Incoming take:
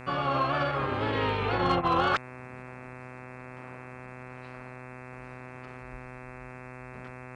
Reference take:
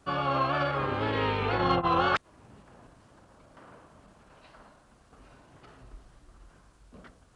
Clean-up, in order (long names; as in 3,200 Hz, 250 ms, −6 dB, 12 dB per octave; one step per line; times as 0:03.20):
clipped peaks rebuilt −17 dBFS
hum removal 126.6 Hz, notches 21